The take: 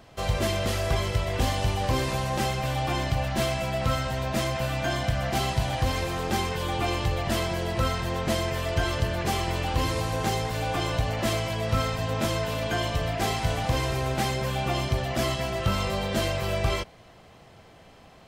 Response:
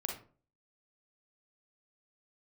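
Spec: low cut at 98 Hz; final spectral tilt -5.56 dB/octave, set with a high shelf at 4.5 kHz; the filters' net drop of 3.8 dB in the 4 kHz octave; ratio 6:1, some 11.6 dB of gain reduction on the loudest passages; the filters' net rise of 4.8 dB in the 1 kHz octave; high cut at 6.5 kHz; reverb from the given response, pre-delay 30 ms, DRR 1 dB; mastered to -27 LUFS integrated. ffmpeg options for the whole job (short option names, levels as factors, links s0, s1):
-filter_complex "[0:a]highpass=98,lowpass=6500,equalizer=f=1000:t=o:g=6.5,equalizer=f=4000:t=o:g=-7.5,highshelf=f=4500:g=4.5,acompressor=threshold=0.02:ratio=6,asplit=2[s0][s1];[1:a]atrim=start_sample=2205,adelay=30[s2];[s1][s2]afir=irnorm=-1:irlink=0,volume=0.75[s3];[s0][s3]amix=inputs=2:normalize=0,volume=2.51"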